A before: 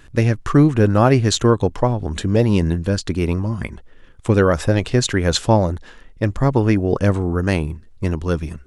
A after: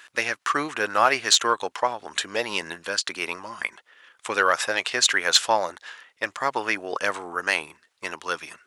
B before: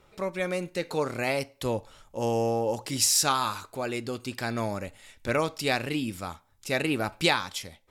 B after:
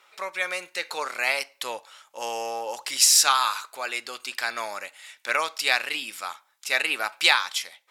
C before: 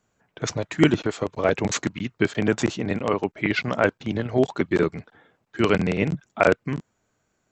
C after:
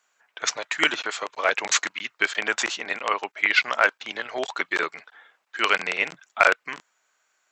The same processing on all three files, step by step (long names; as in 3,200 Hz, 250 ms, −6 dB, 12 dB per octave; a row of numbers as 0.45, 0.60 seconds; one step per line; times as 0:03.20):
high-pass filter 1,200 Hz 12 dB per octave
high-shelf EQ 5,000 Hz −4 dB
in parallel at −6 dB: hard clipping −16.5 dBFS
on the sum: loudness normalisation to −24 LKFS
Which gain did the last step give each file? +2.5, +5.0, +4.5 decibels